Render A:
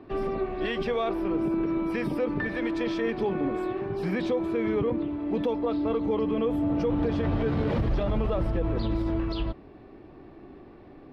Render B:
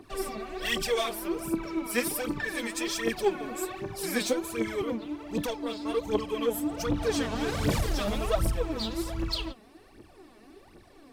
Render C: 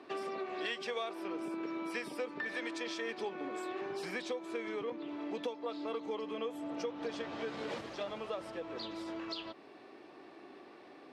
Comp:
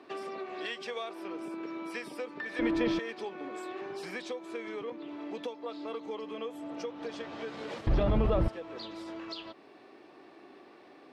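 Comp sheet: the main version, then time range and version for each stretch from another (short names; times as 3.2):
C
2.59–2.99 from A
7.87–8.48 from A
not used: B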